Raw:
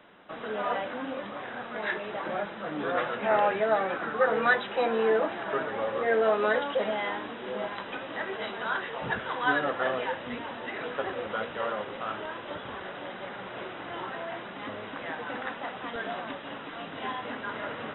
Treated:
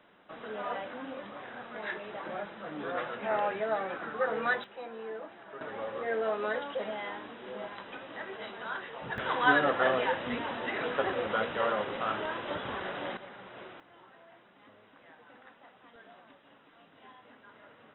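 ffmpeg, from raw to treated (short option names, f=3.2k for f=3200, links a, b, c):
-af "asetnsamples=n=441:p=0,asendcmd='4.64 volume volume -16dB;5.61 volume volume -7dB;9.18 volume volume 2dB;13.17 volume volume -8.5dB;13.8 volume volume -20dB',volume=-6dB"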